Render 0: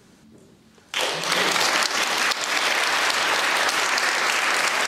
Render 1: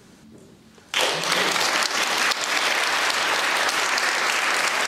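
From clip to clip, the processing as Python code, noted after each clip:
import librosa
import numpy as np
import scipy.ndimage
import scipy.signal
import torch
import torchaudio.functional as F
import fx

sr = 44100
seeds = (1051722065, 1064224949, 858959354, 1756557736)

y = fx.rider(x, sr, range_db=10, speed_s=0.5)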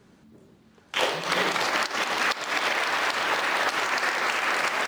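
y = fx.high_shelf(x, sr, hz=4000.0, db=-11.0)
y = fx.mod_noise(y, sr, seeds[0], snr_db=28)
y = fx.upward_expand(y, sr, threshold_db=-33.0, expansion=1.5)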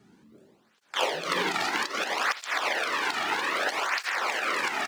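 y = fx.flanger_cancel(x, sr, hz=0.62, depth_ms=2.0)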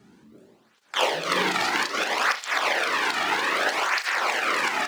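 y = fx.room_flutter(x, sr, wall_m=6.4, rt60_s=0.22)
y = y * librosa.db_to_amplitude(3.5)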